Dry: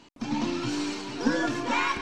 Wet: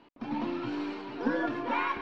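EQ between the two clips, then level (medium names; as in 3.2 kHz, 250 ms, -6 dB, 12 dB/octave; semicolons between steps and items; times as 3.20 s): distance through air 400 m; tone controls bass -9 dB, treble +10 dB; treble shelf 4.2 kHz -12 dB; 0.0 dB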